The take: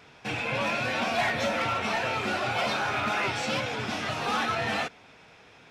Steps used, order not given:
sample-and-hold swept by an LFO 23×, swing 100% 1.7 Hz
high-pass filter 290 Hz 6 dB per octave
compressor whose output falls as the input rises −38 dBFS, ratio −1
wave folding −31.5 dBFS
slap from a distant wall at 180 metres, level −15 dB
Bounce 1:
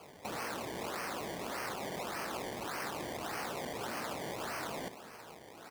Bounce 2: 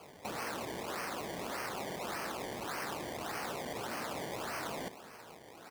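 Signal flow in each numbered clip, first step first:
wave folding, then slap from a distant wall, then sample-and-hold swept by an LFO, then compressor whose output falls as the input rises, then high-pass filter
wave folding, then compressor whose output falls as the input rises, then slap from a distant wall, then sample-and-hold swept by an LFO, then high-pass filter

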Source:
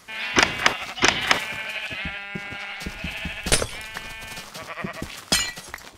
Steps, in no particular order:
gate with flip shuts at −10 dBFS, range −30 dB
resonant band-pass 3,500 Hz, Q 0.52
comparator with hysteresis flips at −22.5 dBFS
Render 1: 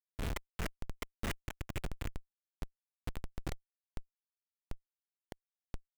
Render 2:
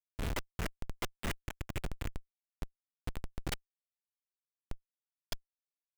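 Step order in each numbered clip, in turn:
gate with flip, then resonant band-pass, then comparator with hysteresis
resonant band-pass, then gate with flip, then comparator with hysteresis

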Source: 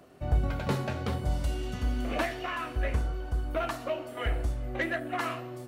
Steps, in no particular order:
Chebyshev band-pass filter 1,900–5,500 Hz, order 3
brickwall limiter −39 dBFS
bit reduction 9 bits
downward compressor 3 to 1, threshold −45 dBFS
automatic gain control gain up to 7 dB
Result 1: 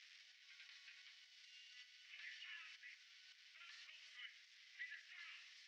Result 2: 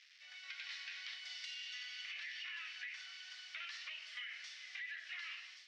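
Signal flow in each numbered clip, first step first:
automatic gain control, then downward compressor, then bit reduction, then brickwall limiter, then Chebyshev band-pass filter
bit reduction, then Chebyshev band-pass filter, then brickwall limiter, then automatic gain control, then downward compressor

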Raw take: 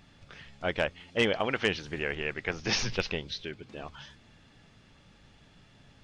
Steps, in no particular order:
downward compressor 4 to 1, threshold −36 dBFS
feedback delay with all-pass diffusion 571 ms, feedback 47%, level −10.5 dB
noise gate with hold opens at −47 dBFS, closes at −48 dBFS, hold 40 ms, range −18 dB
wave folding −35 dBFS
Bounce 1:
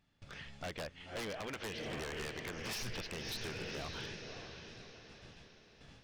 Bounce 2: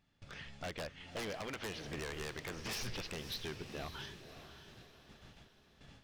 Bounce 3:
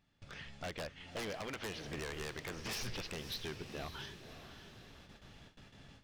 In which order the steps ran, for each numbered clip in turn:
noise gate with hold, then feedback delay with all-pass diffusion, then downward compressor, then wave folding
noise gate with hold, then downward compressor, then wave folding, then feedback delay with all-pass diffusion
downward compressor, then wave folding, then feedback delay with all-pass diffusion, then noise gate with hold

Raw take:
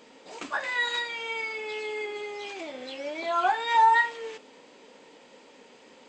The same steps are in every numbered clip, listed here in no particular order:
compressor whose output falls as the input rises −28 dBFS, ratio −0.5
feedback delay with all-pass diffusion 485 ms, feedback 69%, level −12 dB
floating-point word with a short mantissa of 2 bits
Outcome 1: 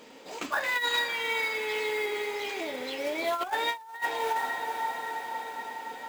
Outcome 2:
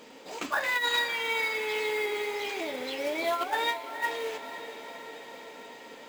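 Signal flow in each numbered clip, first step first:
floating-point word with a short mantissa, then feedback delay with all-pass diffusion, then compressor whose output falls as the input rises
floating-point word with a short mantissa, then compressor whose output falls as the input rises, then feedback delay with all-pass diffusion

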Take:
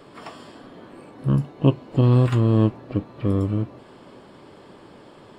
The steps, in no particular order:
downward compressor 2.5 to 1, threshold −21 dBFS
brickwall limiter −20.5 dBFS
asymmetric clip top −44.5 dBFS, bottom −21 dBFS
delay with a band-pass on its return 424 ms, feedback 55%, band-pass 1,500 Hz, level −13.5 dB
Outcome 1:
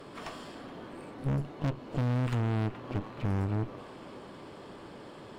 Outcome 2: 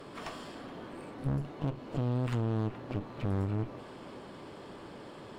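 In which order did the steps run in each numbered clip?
delay with a band-pass on its return, then downward compressor, then asymmetric clip, then brickwall limiter
downward compressor, then brickwall limiter, then delay with a band-pass on its return, then asymmetric clip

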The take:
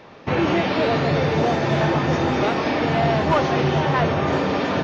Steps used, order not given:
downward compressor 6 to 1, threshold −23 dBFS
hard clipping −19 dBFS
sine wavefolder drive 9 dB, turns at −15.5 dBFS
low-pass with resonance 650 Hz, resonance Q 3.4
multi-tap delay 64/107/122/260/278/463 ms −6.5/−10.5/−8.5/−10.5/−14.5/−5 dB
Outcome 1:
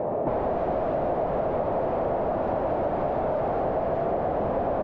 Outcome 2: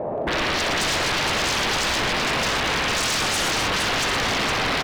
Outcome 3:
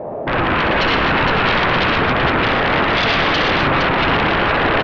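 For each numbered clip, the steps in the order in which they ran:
sine wavefolder, then multi-tap delay, then hard clipping, then low-pass with resonance, then downward compressor
low-pass with resonance, then sine wavefolder, then downward compressor, then multi-tap delay, then hard clipping
hard clipping, then downward compressor, then low-pass with resonance, then sine wavefolder, then multi-tap delay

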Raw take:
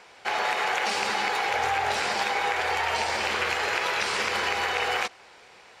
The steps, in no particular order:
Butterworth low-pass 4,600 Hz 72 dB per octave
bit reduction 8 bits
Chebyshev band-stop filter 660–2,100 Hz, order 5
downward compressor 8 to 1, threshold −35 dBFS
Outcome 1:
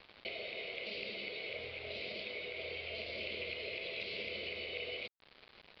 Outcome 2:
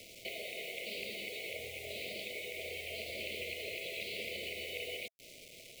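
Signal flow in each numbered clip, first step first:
downward compressor, then Chebyshev band-stop filter, then bit reduction, then Butterworth low-pass
Butterworth low-pass, then downward compressor, then bit reduction, then Chebyshev band-stop filter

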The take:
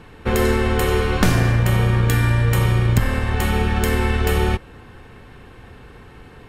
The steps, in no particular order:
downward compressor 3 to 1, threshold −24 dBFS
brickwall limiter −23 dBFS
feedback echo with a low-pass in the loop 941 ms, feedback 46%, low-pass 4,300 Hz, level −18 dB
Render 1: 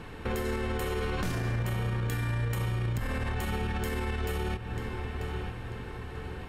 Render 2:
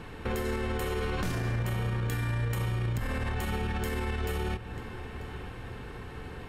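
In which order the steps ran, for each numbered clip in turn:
feedback echo with a low-pass in the loop, then downward compressor, then brickwall limiter
downward compressor, then feedback echo with a low-pass in the loop, then brickwall limiter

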